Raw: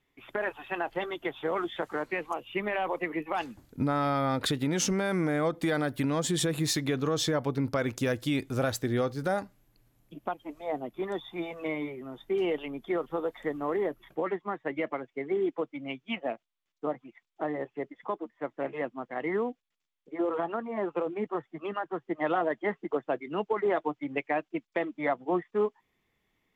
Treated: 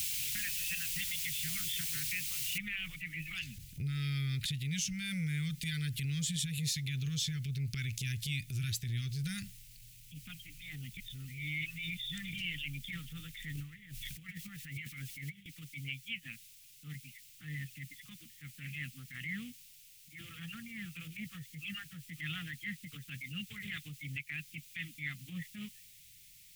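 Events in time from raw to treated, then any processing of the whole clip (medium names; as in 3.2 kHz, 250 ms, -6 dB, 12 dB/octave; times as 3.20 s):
2.58 s: noise floor step -43 dB -67 dB
10.97–12.33 s: reverse
13.55–15.46 s: compressor with a negative ratio -39 dBFS
whole clip: elliptic band-stop 150–2400 Hz, stop band 50 dB; compression 6:1, threshold -42 dBFS; transient shaper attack -8 dB, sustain +2 dB; trim +9.5 dB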